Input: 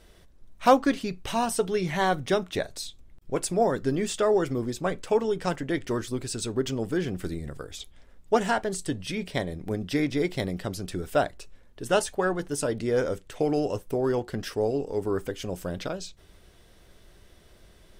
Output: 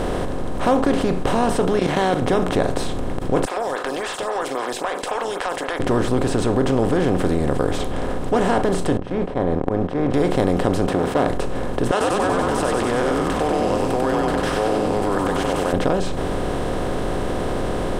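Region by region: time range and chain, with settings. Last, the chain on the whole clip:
1.79–2.22 level quantiser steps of 14 dB + weighting filter D
3.45–5.8 Bessel high-pass 1600 Hz, order 4 + compressor 3:1, threshold -45 dBFS + photocell phaser 3.7 Hz
8.97–10.14 Chebyshev low-pass 1100 Hz + gate -37 dBFS, range -36 dB + auto swell 0.241 s
10.87–11.27 half-wave gain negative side -12 dB + HPF 150 Hz + bell 9800 Hz -9 dB 1.8 oct
11.91–15.73 HPF 1200 Hz + frequency-shifting echo 95 ms, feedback 54%, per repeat -110 Hz, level -3 dB
whole clip: per-bin compression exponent 0.4; tilt -2.5 dB/oct; fast leveller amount 50%; gain -4.5 dB

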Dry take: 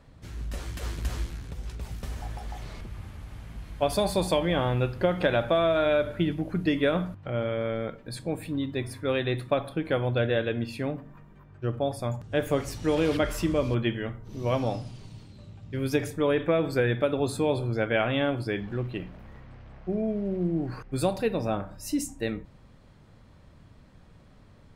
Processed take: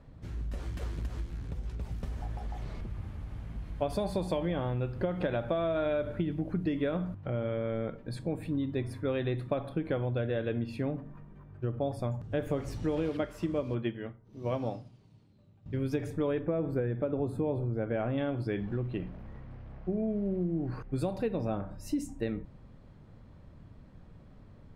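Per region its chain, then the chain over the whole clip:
13.09–15.66 HPF 140 Hz 6 dB/oct + upward expander, over -47 dBFS
16.39–18.18 bell 5000 Hz -15 dB 2.4 oct + notch 5700 Hz, Q 14
whole clip: tilt -2.5 dB/oct; compressor, threshold -23 dBFS; low shelf 94 Hz -8.5 dB; gain -3 dB

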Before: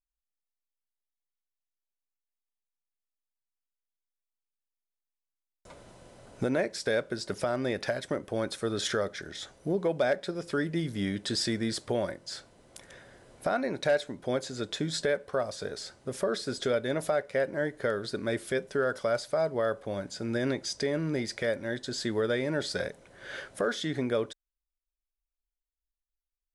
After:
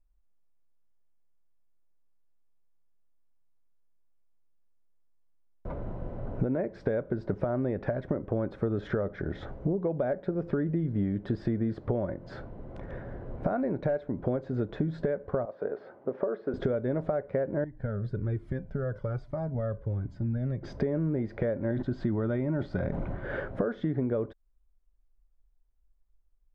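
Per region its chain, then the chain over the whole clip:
15.45–16.54 HPF 430 Hz + tape spacing loss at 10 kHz 34 dB
17.64–20.63 EQ curve 120 Hz 0 dB, 440 Hz -12 dB, 1200 Hz -11 dB, 2000 Hz -8 dB, 3300 Hz -7 dB, 12000 Hz +4 dB + cascading flanger falling 1.2 Hz
21.71–23.24 bell 470 Hz -12 dB 0.37 oct + notch 1700 Hz, Q 10 + sustainer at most 46 dB/s
whole clip: LPF 1400 Hz 12 dB/oct; tilt -3 dB/oct; compressor 6:1, threshold -36 dBFS; gain +9 dB

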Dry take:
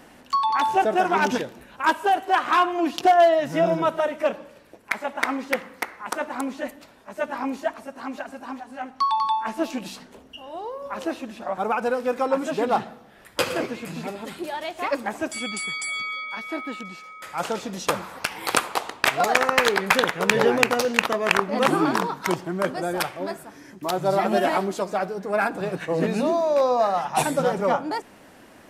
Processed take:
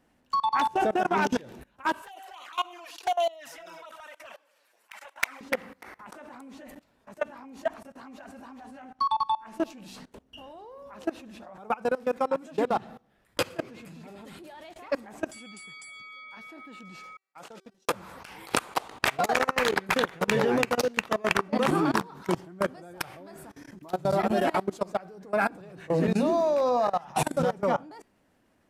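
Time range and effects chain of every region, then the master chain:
2.02–5.41 HPF 710 Hz + tilt +2 dB/oct + envelope flanger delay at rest 10.1 ms, full sweep at -19 dBFS
17.17–17.94 HPF 210 Hz + gate -32 dBFS, range -45 dB
whole clip: low shelf 200 Hz +8.5 dB; de-hum 384.6 Hz, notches 39; level quantiser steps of 22 dB; gain -1.5 dB

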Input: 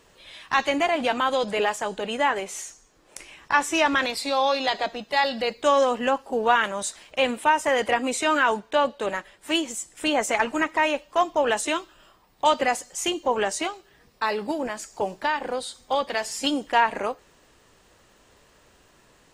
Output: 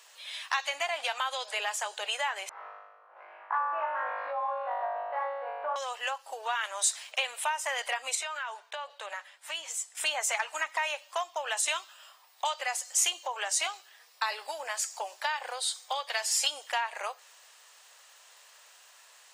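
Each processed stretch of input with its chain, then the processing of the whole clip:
2.49–5.76 CVSD 32 kbps + LPF 1300 Hz 24 dB/oct + flutter echo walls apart 3.4 m, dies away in 1.1 s
8.15–9.95 LPF 1000 Hz 6 dB/oct + tilt +3 dB/oct + compressor 12:1, threshold -31 dBFS
whole clip: compressor, threshold -27 dBFS; inverse Chebyshev high-pass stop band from 190 Hz, stop band 60 dB; high shelf 2200 Hz +9.5 dB; gain -2 dB

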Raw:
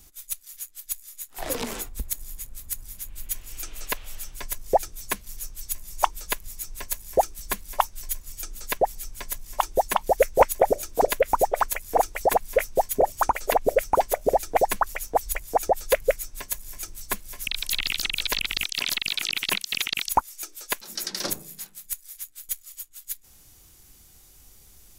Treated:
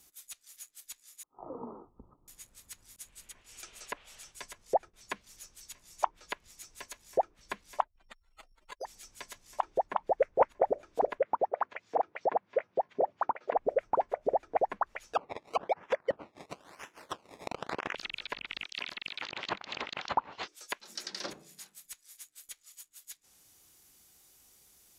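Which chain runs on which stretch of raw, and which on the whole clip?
1.23–2.28 rippled Chebyshev low-pass 1300 Hz, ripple 6 dB + bell 140 Hz +6.5 dB 0.94 oct + sustainer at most 95 dB/s
2.96–5.03 notch 300 Hz, Q 9.4 + expander -38 dBFS + bell 9500 Hz +6.5 dB 1.1 oct
7.82–8.85 spectral contrast raised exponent 2.3 + compressor 3:1, threshold -33 dBFS + careless resampling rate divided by 8×, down none, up hold
11.21–13.56 HPF 110 Hz 24 dB/oct + air absorption 180 m
15.13–17.95 HPF 390 Hz + high shelf 11000 Hz -9.5 dB + decimation with a swept rate 20× 1 Hz
19.22–20.48 resonant high shelf 3700 Hz +6.5 dB, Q 1.5 + decimation joined by straight lines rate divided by 4×
whole clip: treble ducked by the level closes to 1400 Hz, closed at -21 dBFS; HPF 300 Hz 6 dB/oct; gain -6.5 dB

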